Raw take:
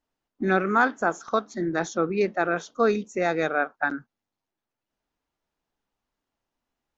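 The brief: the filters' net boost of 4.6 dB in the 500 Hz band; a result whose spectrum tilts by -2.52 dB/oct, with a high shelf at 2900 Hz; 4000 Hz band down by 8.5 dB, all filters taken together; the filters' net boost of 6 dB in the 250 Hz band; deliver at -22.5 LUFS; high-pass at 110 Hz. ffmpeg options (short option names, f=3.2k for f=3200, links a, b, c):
-af "highpass=110,equalizer=f=250:t=o:g=7.5,equalizer=f=500:t=o:g=3.5,highshelf=f=2.9k:g=-3,equalizer=f=4k:t=o:g=-7.5,volume=-0.5dB"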